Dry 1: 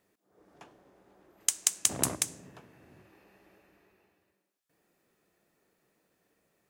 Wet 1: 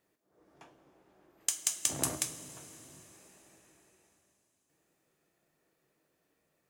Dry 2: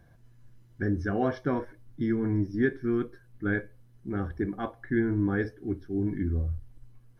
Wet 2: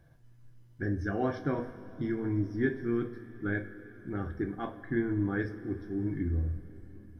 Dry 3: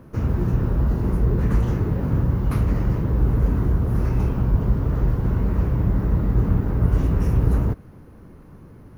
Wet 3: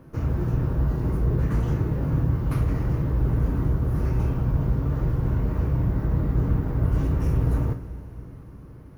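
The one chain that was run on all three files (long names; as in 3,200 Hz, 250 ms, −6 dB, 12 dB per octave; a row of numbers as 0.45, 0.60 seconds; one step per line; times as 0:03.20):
coupled-rooms reverb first 0.28 s, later 4.2 s, from −18 dB, DRR 5 dB
hard clipping −10 dBFS
level −4 dB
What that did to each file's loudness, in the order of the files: −3.5, −3.5, −3.0 LU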